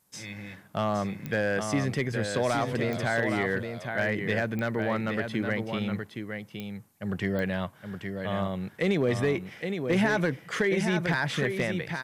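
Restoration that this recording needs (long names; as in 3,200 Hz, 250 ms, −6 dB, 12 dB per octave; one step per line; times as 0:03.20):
clipped peaks rebuilt −17.5 dBFS
click removal
downward expander −38 dBFS, range −21 dB
echo removal 817 ms −6.5 dB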